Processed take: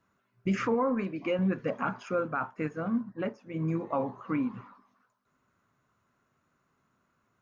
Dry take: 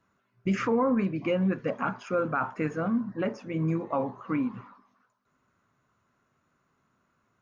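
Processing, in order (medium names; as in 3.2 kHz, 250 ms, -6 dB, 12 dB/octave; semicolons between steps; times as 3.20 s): 0.74–1.39 s: peaking EQ 120 Hz -12 dB 1.2 oct; 2.13–3.74 s: upward expansion 1.5:1, over -46 dBFS; trim -1.5 dB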